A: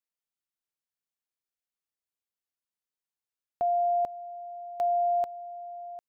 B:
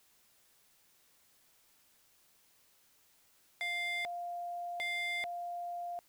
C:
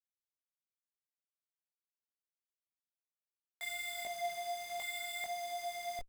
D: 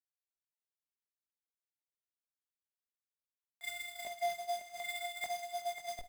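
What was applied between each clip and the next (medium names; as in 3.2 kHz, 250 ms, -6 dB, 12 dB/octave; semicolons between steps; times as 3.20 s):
added noise white -68 dBFS; wavefolder -31 dBFS
Schmitt trigger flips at -45 dBFS; chorus voices 6, 0.49 Hz, delay 20 ms, depth 4.1 ms; trim +5 dB
gate -40 dBFS, range -16 dB; on a send: multi-tap echo 49/379/543 ms -15/-20/-9 dB; on the sum: trim +3 dB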